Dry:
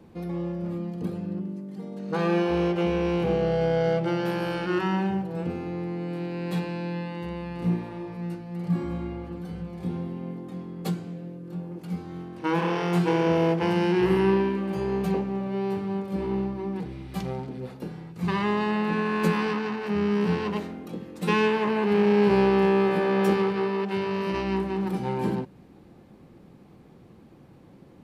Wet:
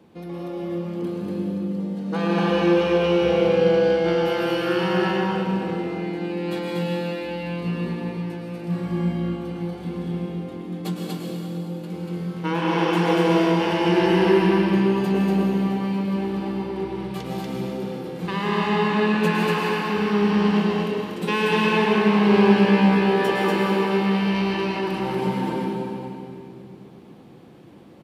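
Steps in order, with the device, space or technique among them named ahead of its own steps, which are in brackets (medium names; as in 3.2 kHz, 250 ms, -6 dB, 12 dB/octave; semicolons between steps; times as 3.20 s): stadium PA (high-pass 180 Hz 6 dB/octave; peaking EQ 3.2 kHz +4 dB 0.54 oct; loudspeakers at several distances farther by 56 m -11 dB, 82 m -2 dB; reverberation RT60 2.6 s, pre-delay 102 ms, DRR -0.5 dB)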